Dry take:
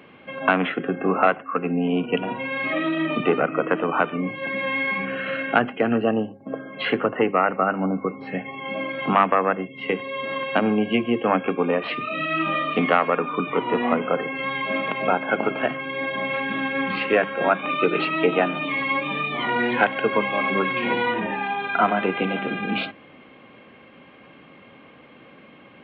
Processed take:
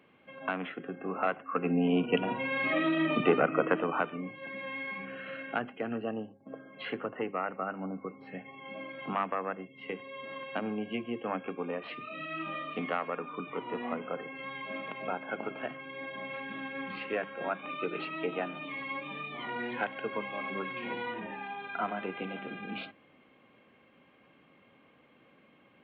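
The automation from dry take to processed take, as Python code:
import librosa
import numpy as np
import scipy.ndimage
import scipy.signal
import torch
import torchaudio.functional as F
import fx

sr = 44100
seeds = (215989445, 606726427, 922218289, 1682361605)

y = fx.gain(x, sr, db=fx.line((1.1, -14.5), (1.7, -4.5), (3.64, -4.5), (4.33, -14.0)))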